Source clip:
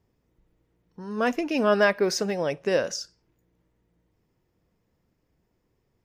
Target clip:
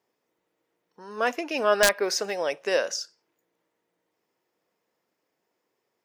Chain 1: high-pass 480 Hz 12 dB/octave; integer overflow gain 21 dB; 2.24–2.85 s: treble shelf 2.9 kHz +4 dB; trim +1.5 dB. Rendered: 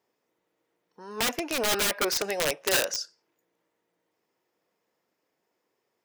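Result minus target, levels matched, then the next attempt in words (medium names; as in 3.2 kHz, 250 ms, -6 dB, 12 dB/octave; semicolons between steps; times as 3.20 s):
integer overflow: distortion +18 dB
high-pass 480 Hz 12 dB/octave; integer overflow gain 9.5 dB; 2.24–2.85 s: treble shelf 2.9 kHz +4 dB; trim +1.5 dB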